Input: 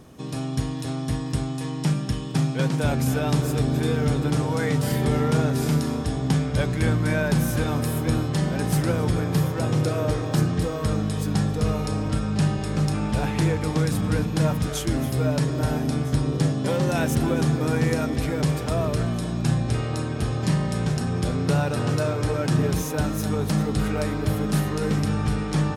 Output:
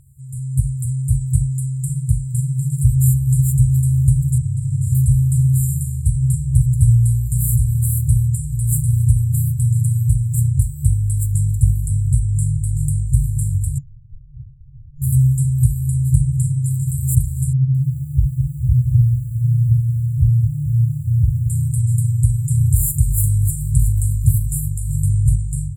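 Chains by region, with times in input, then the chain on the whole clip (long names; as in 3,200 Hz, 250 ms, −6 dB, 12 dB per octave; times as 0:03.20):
0:04.38–0:04.95: high-frequency loss of the air 84 metres + double-tracking delay 50 ms −6 dB
0:13.78–0:15.02: spectral tilt +4.5 dB per octave + voice inversion scrambler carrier 2,700 Hz
0:17.53–0:21.50: expanding power law on the bin magnitudes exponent 2.8 + feedback echo at a low word length 218 ms, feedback 55%, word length 8 bits, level −10 dB
0:22.50–0:24.58: double-tracking delay 45 ms −11.5 dB + envelope flattener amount 50%
whole clip: brick-wall band-stop 150–7,100 Hz; automatic gain control gain up to 9 dB; level +3 dB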